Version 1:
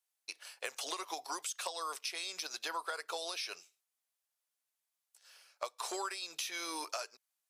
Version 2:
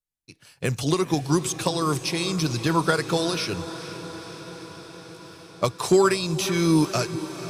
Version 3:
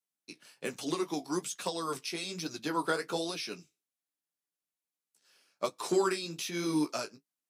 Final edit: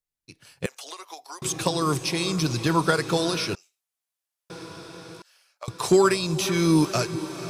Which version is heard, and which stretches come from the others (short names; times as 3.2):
2
0.66–1.42 from 1
3.55–4.5 from 1
5.22–5.68 from 1
not used: 3